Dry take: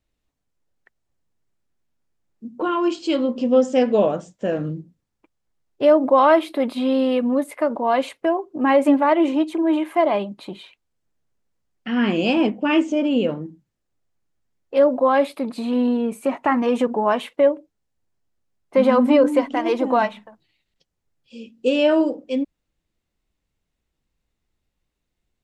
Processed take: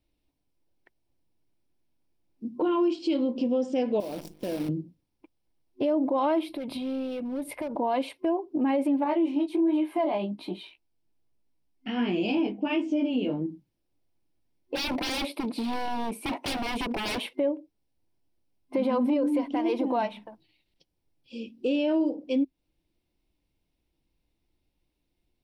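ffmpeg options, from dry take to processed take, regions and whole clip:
-filter_complex "[0:a]asettb=1/sr,asplit=3[s0][s1][s2];[s0]atrim=end=4.004[s3];[s1]atrim=start=4:end=4.69,asetpts=PTS-STARTPTS,afade=t=in:d=0.004:c=qsin,afade=t=out:st=0.686:d=0.004:c=qsin,bandreject=f=51.67:t=h:w=4,bandreject=f=103.34:t=h:w=4,bandreject=f=155.01:t=h:w=4,bandreject=f=206.68:t=h:w=4,bandreject=f=258.35:t=h:w=4,bandreject=f=310.02:t=h:w=4,bandreject=f=361.69:t=h:w=4,bandreject=f=413.36:t=h:w=4,bandreject=f=465.03:t=h:w=4,acompressor=threshold=0.0224:ratio=2.5:attack=3.2:release=140:knee=1:detection=peak,acrusher=bits=7:dc=4:mix=0:aa=0.000001[s4];[s2]atrim=start=4.686[s5];[s3][s4]acrossfade=d=0.004:c1=hsin:c2=qsin[s6];[s6][s5]acrossfade=d=0.004:c1=qsin:c2=hsin,asettb=1/sr,asplit=3[s7][s8][s9];[s7]atrim=end=6.494[s10];[s8]atrim=start=6.49:end=7.76,asetpts=PTS-STARTPTS,afade=t=in:d=0.004:c=qsin,afade=t=out:st=1.266:d=0.004:c=qsin,lowshelf=f=170:t=q:w=1.5:g=13,asoftclip=type=hard:threshold=0.112,acompressor=threshold=0.0282:ratio=10:attack=3.2:release=140:knee=1:detection=peak[s11];[s9]atrim=start=7.756[s12];[s10][s11]acrossfade=d=0.004:c1=hsin:c2=qsin[s13];[s13][s12]acrossfade=d=0.004:c1=qsin:c2=hsin,asettb=1/sr,asplit=3[s14][s15][s16];[s14]atrim=end=9.044[s17];[s15]atrim=start=9.04:end=13.42,asetpts=PTS-STARTPTS,afade=t=in:d=0.004:c=qsin,afade=t=out:st=4.376:d=0.004:c=qsin,bandreject=f=530:w=9.9,asplit=2[s18][s19];[s19]adelay=15,volume=0.251[s20];[s18][s20]amix=inputs=2:normalize=0,atrim=end_sample=193158,flanger=delay=16.5:depth=4.5:speed=1.3[s21];[s16]atrim=start=13.416[s22];[s17][s21]acrossfade=d=0.004:c1=hsin:c2=qsin[s23];[s23][s22]acrossfade=d=0.004:c1=qsin:c2=hsin,asettb=1/sr,asplit=3[s24][s25][s26];[s24]atrim=end=14.754[s27];[s25]atrim=start=14.75:end=17.26,asetpts=PTS-STARTPTS,afade=t=in:d=0.004:c=qsin,afade=t=out:st=2.506:d=0.004:c=qsin,highpass=180,aeval=exprs='0.0631*(abs(mod(val(0)/0.0631+3,4)-2)-1)':c=same[s28];[s26]atrim=start=17.256[s29];[s27][s28]acrossfade=d=0.004:c1=hsin:c2=qsin[s30];[s30][s29]acrossfade=d=0.004:c1=qsin:c2=hsin,superequalizer=6b=2:10b=0.447:11b=0.501:15b=0.355,acompressor=threshold=0.0447:ratio=2,alimiter=limit=0.119:level=0:latency=1:release=19"

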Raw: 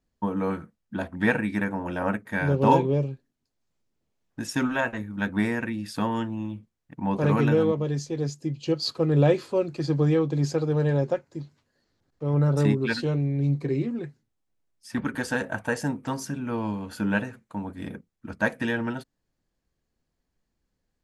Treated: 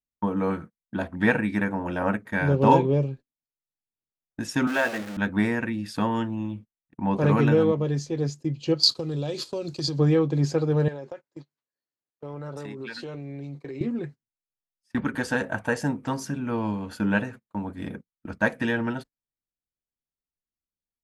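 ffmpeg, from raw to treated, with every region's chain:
-filter_complex "[0:a]asettb=1/sr,asplit=3[s0][s1][s2];[s0]atrim=end=4.674[s3];[s1]atrim=start=4.67:end=5.17,asetpts=PTS-STARTPTS,afade=t=in:d=0.004:c=qsin,afade=t=out:st=0.496:d=0.004:c=qsin,aeval=exprs='val(0)+0.5*0.0316*sgn(val(0))':c=same,highpass=270,equalizer=f=1000:w=5.4:g=-8[s4];[s2]atrim=start=5.166[s5];[s3][s4]acrossfade=d=0.004:c1=hsin:c2=qsin[s6];[s6][s5]acrossfade=d=0.004:c1=qsin:c2=hsin,asettb=1/sr,asplit=3[s7][s8][s9];[s7]atrim=end=8.834[s10];[s8]atrim=start=8.83:end=9.99,asetpts=PTS-STARTPTS,afade=t=in:d=0.004:c=qsin,afade=t=out:st=1.156:d=0.004:c=qsin,agate=range=0.282:threshold=0.00794:ratio=16:release=100:detection=peak,acompressor=threshold=0.0447:ratio=8:attack=3.2:release=140:knee=1:detection=peak,highshelf=f=2900:t=q:w=1.5:g=12[s11];[s9]atrim=start=9.986[s12];[s10][s11]acrossfade=d=0.004:c1=hsin:c2=qsin[s13];[s13][s12]acrossfade=d=0.004:c1=qsin:c2=hsin,asettb=1/sr,asplit=3[s14][s15][s16];[s14]atrim=end=10.884[s17];[s15]atrim=start=10.88:end=13.81,asetpts=PTS-STARTPTS,afade=t=in:d=0.004:c=qsin,afade=t=out:st=2.926:d=0.004:c=qsin,highpass=f=500:p=1,acompressor=threshold=0.0224:ratio=16:attack=3.2:release=140:knee=1:detection=peak[s18];[s16]atrim=start=13.806[s19];[s17][s18]acrossfade=d=0.004:c1=hsin:c2=qsin[s20];[s20][s19]acrossfade=d=0.004:c1=qsin:c2=hsin,agate=range=0.0631:threshold=0.00891:ratio=16:detection=peak,highshelf=f=7500:g=-5.5,volume=1.19"

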